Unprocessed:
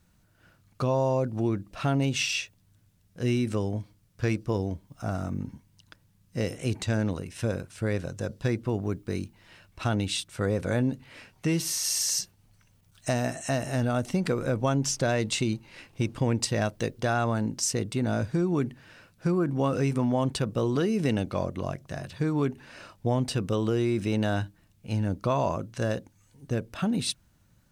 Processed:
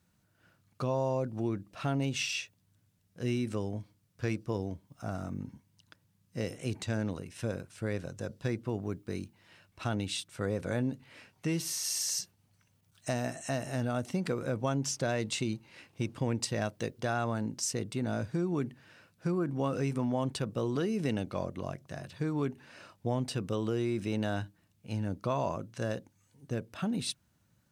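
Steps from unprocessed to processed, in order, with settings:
high-pass filter 83 Hz
level −5.5 dB

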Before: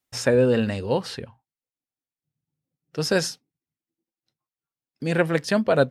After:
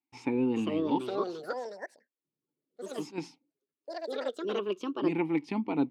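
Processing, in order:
0:00.98–0:03.18: volume swells 139 ms
formant filter u
delay with pitch and tempo change per echo 456 ms, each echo +4 semitones, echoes 3
level +5.5 dB

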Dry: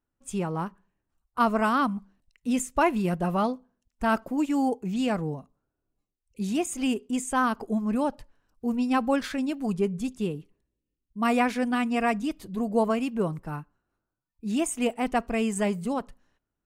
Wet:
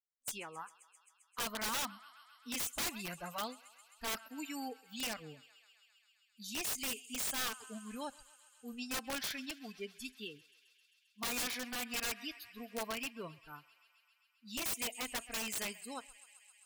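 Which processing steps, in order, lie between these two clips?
first-order pre-emphasis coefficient 0.9
noise reduction from a noise print of the clip's start 23 dB
parametric band 2,700 Hz +8 dB 2.1 octaves
feedback echo with a high-pass in the loop 132 ms, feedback 84%, high-pass 680 Hz, level −21 dB
wrap-around overflow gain 31 dB

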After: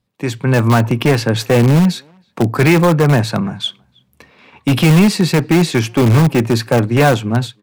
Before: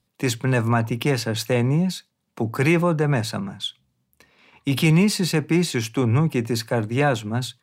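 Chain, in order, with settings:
high-shelf EQ 3,900 Hz −9 dB
automatic gain control gain up to 11 dB
in parallel at −11 dB: wrap-around overflow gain 7 dB
on the sum: far-end echo of a speakerphone 320 ms, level −28 dB

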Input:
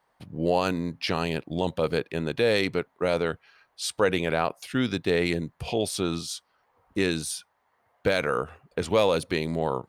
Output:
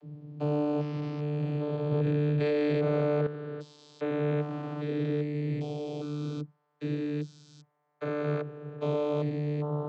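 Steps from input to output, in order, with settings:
spectrum averaged block by block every 400 ms
channel vocoder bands 32, saw 148 Hz
0:01.92–0:03.27: envelope flattener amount 100%

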